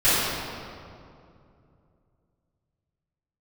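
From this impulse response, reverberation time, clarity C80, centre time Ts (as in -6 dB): 2.5 s, -1.5 dB, 0.157 s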